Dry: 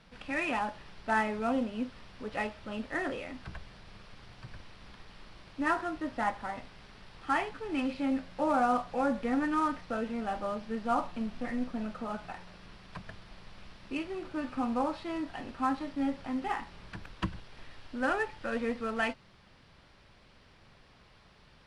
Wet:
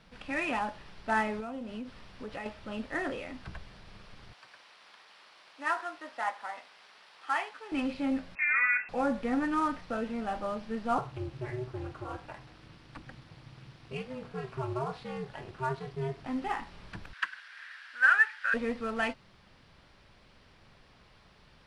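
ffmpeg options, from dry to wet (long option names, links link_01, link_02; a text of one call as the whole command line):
ffmpeg -i in.wav -filter_complex "[0:a]asettb=1/sr,asplit=3[link_01][link_02][link_03];[link_01]atrim=end=1.404[link_04];[link_02]atrim=start=1.4:end=2.46,asetpts=PTS-STARTPTS,afade=type=in:duration=0.004:curve=qsin,afade=type=out:start_time=1.056:duration=0.004:curve=qsin,acompressor=threshold=-35dB:ratio=10:attack=3.2:release=140:knee=1:detection=peak[link_05];[link_03]atrim=start=2.456[link_06];[link_04][link_05]acrossfade=duration=0.004:curve1=hsin:curve2=qsin[link_07];[link_07][link_06]acrossfade=duration=0.004:curve1=qsin:curve2=hsin,asettb=1/sr,asplit=3[link_08][link_09][link_10];[link_08]atrim=end=4.334[link_11];[link_09]atrim=start=4.33:end=7.72,asetpts=PTS-STARTPTS,afade=type=in:duration=0.004:curve=qsin,afade=type=out:start_time=3.386:duration=0.004:curve=qsin,highpass=700[link_12];[link_10]atrim=start=7.716[link_13];[link_11][link_12]acrossfade=duration=0.004:curve1=hsin:curve2=qsin[link_14];[link_14][link_13]acrossfade=duration=0.004:curve1=qsin:curve2=hsin,asettb=1/sr,asplit=3[link_15][link_16][link_17];[link_15]atrim=end=8.354[link_18];[link_16]atrim=start=8.35:end=8.89,asetpts=PTS-STARTPTS,afade=type=in:duration=0.004:curve=qsin,afade=type=out:start_time=0.536:duration=0.004:curve=qsin,lowpass=frequency=2300:width_type=q:width=0.5098,lowpass=frequency=2300:width_type=q:width=0.6013,lowpass=frequency=2300:width_type=q:width=0.9,lowpass=frequency=2300:width_type=q:width=2.563,afreqshift=-2700[link_19];[link_17]atrim=start=8.886[link_20];[link_18][link_19]acrossfade=duration=0.004:curve1=hsin:curve2=qsin[link_21];[link_21][link_20]acrossfade=duration=0.004:curve1=qsin:curve2=hsin,asettb=1/sr,asplit=3[link_22][link_23][link_24];[link_22]atrim=end=10.984[link_25];[link_23]atrim=start=10.98:end=16.26,asetpts=PTS-STARTPTS,afade=type=in:duration=0.004:curve=qsin,afade=type=out:start_time=5.276:duration=0.004:curve=qsin,aeval=exprs='val(0)*sin(2*PI*130*n/s)':channel_layout=same[link_26];[link_24]atrim=start=16.256[link_27];[link_25][link_26]acrossfade=duration=0.004:curve1=hsin:curve2=qsin[link_28];[link_28][link_27]acrossfade=duration=0.004:curve1=qsin:curve2=hsin,asettb=1/sr,asplit=3[link_29][link_30][link_31];[link_29]atrim=end=17.134[link_32];[link_30]atrim=start=17.13:end=18.54,asetpts=PTS-STARTPTS,afade=type=in:duration=0.004:curve=qsin,afade=type=out:start_time=1.406:duration=0.004:curve=qsin,highpass=frequency=1600:width_type=q:width=5.5[link_33];[link_31]atrim=start=18.536[link_34];[link_32][link_33]acrossfade=duration=0.004:curve1=hsin:curve2=qsin[link_35];[link_35][link_34]acrossfade=duration=0.004:curve1=qsin:curve2=hsin" out.wav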